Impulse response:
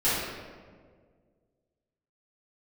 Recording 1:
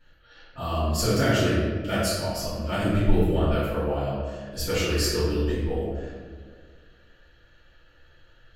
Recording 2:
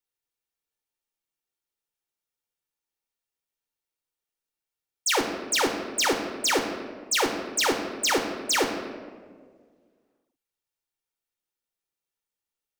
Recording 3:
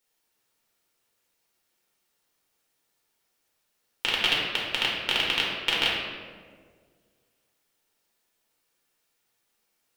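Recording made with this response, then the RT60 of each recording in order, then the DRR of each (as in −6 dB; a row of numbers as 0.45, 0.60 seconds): 1; 1.8, 1.8, 1.8 seconds; −13.0, 3.5, −4.5 decibels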